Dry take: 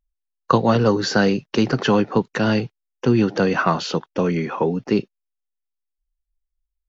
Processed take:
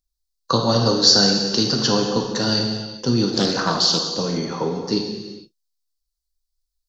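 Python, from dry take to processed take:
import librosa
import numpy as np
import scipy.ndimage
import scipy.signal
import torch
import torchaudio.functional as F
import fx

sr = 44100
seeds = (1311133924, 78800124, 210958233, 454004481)

y = fx.high_shelf_res(x, sr, hz=3300.0, db=10.5, q=3.0)
y = fx.rev_gated(y, sr, seeds[0], gate_ms=490, shape='falling', drr_db=0.5)
y = fx.doppler_dist(y, sr, depth_ms=0.28, at=(3.33, 4.12))
y = F.gain(torch.from_numpy(y), -4.5).numpy()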